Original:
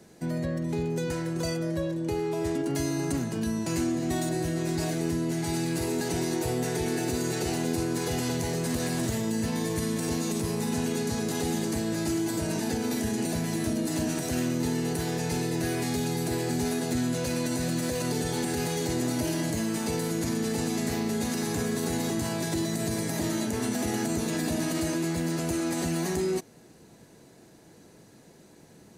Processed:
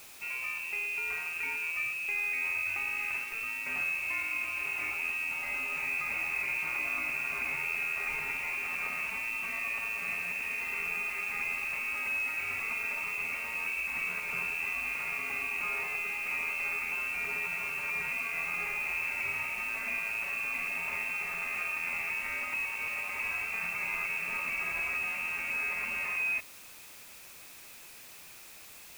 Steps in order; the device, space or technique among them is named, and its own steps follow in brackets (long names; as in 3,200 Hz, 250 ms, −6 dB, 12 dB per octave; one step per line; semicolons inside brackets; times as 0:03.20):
scrambled radio voice (band-pass filter 340–2,900 Hz; voice inversion scrambler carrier 2,900 Hz; white noise bed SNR 16 dB)
level −1 dB